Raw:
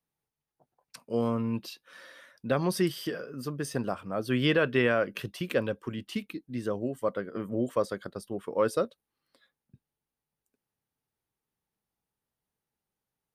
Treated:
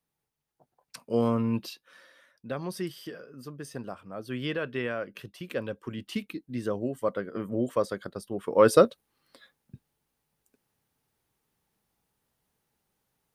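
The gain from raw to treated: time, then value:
1.62 s +3 dB
2.09 s -7 dB
5.37 s -7 dB
6.12 s +1 dB
8.32 s +1 dB
8.76 s +10 dB

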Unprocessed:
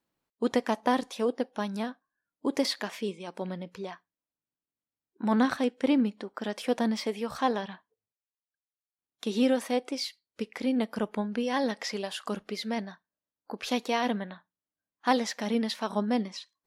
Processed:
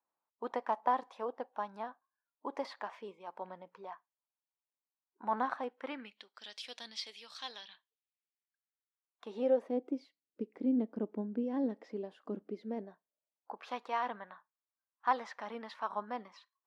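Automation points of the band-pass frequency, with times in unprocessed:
band-pass, Q 2.3
5.74 s 930 Hz
6.3 s 4000 Hz
7.7 s 4000 Hz
9.27 s 940 Hz
9.79 s 310 Hz
12.59 s 310 Hz
13.73 s 1100 Hz

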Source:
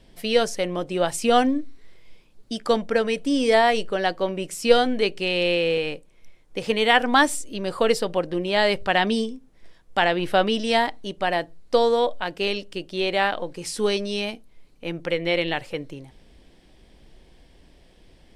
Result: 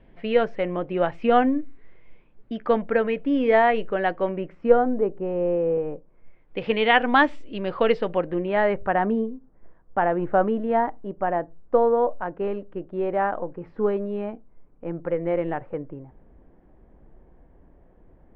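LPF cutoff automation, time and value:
LPF 24 dB/oct
4.27 s 2300 Hz
4.95 s 1100 Hz
5.92 s 1100 Hz
6.59 s 2900 Hz
7.89 s 2900 Hz
9.09 s 1400 Hz

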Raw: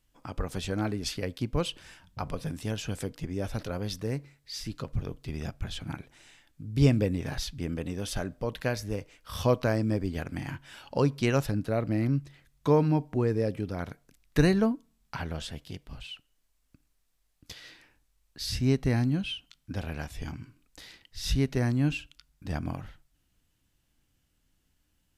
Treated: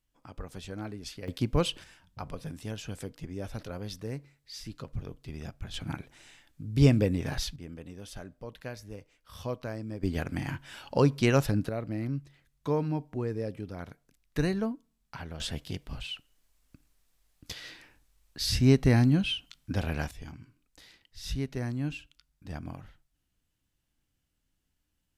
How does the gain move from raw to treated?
-8.5 dB
from 1.28 s +2.5 dB
from 1.84 s -5 dB
from 5.74 s +1 dB
from 7.56 s -10.5 dB
from 10.03 s +2 dB
from 11.69 s -6 dB
from 15.4 s +4 dB
from 20.11 s -6.5 dB

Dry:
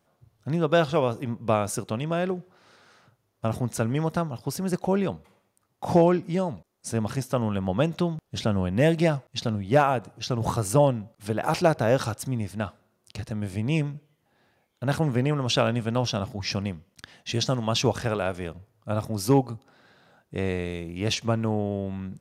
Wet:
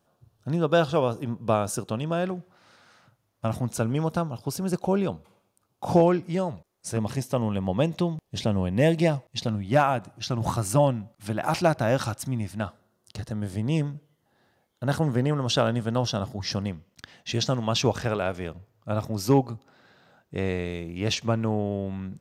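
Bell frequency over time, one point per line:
bell -11.5 dB 0.24 oct
2100 Hz
from 2.25 s 410 Hz
from 3.68 s 1900 Hz
from 6 s 240 Hz
from 6.97 s 1400 Hz
from 9.48 s 450 Hz
from 12.62 s 2400 Hz
from 16.68 s 10000 Hz

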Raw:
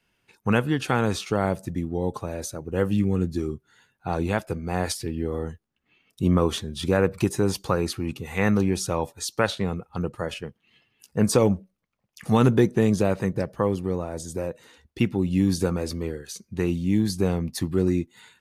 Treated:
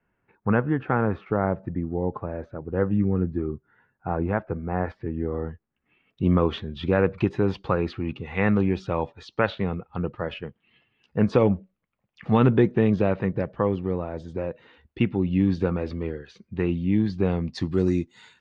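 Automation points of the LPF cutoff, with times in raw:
LPF 24 dB/oct
5.07 s 1800 Hz
6.33 s 3200 Hz
17.21 s 3200 Hz
17.81 s 6500 Hz

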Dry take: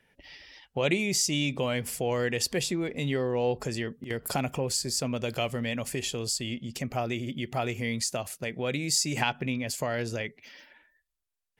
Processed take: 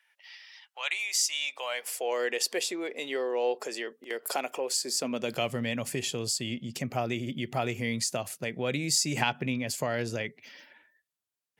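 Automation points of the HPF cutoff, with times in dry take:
HPF 24 dB/oct
1.33 s 960 Hz
2.23 s 360 Hz
4.71 s 360 Hz
5.57 s 100 Hz

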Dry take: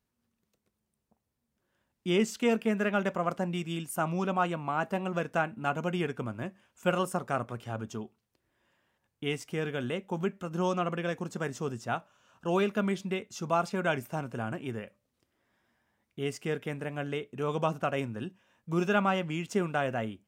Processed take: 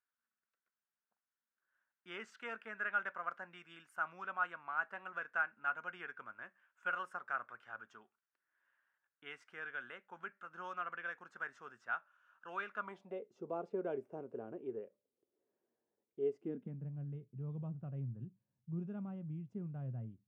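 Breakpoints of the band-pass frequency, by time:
band-pass, Q 4.4
12.71 s 1500 Hz
13.29 s 420 Hz
16.3 s 420 Hz
16.89 s 130 Hz

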